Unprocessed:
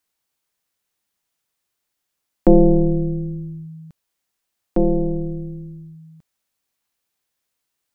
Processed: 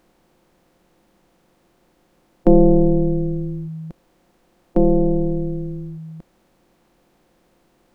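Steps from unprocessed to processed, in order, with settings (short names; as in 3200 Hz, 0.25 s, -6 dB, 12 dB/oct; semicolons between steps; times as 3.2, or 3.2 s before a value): per-bin compression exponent 0.6; gain -1 dB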